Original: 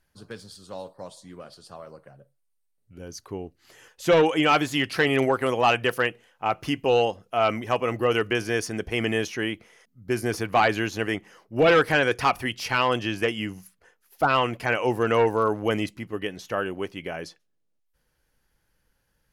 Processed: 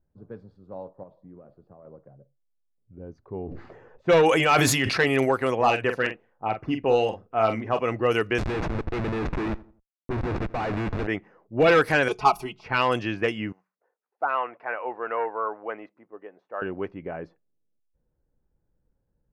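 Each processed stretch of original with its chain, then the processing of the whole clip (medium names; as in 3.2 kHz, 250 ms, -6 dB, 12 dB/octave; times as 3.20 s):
1.03–1.85 s: low-pass 3.2 kHz + compression 5:1, threshold -41 dBFS
3.22–5.04 s: band-stop 300 Hz, Q 9.3 + decay stretcher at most 24 dB/s
5.55–7.79 s: treble shelf 4.8 kHz -7 dB + LFO notch saw down 3.9 Hz 550–6900 Hz + doubling 45 ms -8 dB
8.38–11.07 s: Schmitt trigger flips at -29.5 dBFS + feedback delay 85 ms, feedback 40%, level -20 dB
12.08–12.64 s: comb 4.7 ms, depth 81% + dynamic bell 820 Hz, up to +3 dB, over -26 dBFS, Q 0.89 + static phaser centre 350 Hz, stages 8
13.52–16.62 s: high-pass 730 Hz + treble shelf 2.5 kHz -9 dB + low-pass that closes with the level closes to 1.7 kHz, closed at -23.5 dBFS
whole clip: band-stop 3.1 kHz, Q 10; level-controlled noise filter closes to 510 Hz, open at -17.5 dBFS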